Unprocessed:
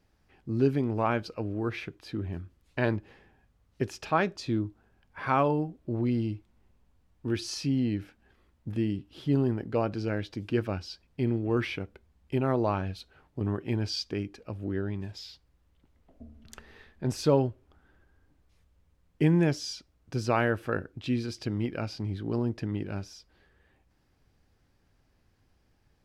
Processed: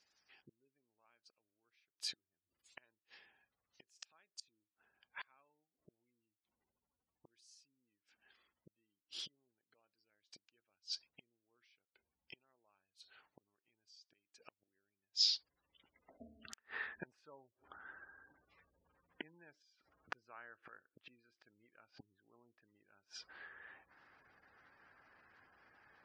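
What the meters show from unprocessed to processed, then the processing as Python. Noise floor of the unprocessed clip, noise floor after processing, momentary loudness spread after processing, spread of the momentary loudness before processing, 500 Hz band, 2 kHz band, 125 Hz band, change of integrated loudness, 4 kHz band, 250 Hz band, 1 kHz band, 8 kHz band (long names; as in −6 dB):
−69 dBFS, below −85 dBFS, 19 LU, 13 LU, −35.0 dB, −14.5 dB, below −40 dB, −12.5 dB, −2.5 dB, −37.0 dB, −26.5 dB, −8.5 dB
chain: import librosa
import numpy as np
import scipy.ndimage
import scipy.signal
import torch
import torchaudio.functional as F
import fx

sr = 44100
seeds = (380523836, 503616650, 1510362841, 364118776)

y = fx.gate_flip(x, sr, shuts_db=-30.0, range_db=-38)
y = fx.spec_gate(y, sr, threshold_db=-30, keep='strong')
y = fx.filter_sweep_bandpass(y, sr, from_hz=7600.0, to_hz=1500.0, start_s=14.83, end_s=16.66, q=1.7)
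y = F.gain(torch.from_numpy(y), 15.0).numpy()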